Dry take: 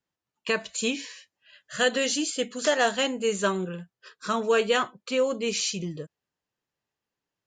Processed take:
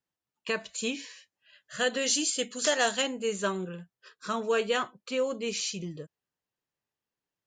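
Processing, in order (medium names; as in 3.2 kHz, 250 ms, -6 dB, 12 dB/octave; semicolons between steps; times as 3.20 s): 2.06–3.02 s: treble shelf 3.2 kHz +9 dB; trim -4.5 dB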